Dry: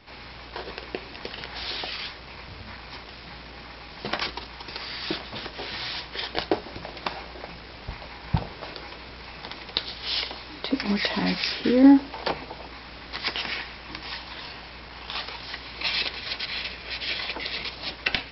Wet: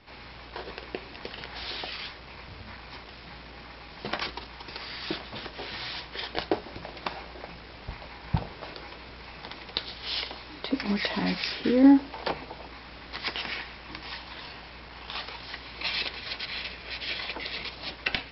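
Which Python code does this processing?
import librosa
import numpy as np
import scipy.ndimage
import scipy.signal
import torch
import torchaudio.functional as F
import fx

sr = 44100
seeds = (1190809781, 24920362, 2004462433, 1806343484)

y = fx.air_absorb(x, sr, metres=56.0)
y = y * 10.0 ** (-2.5 / 20.0)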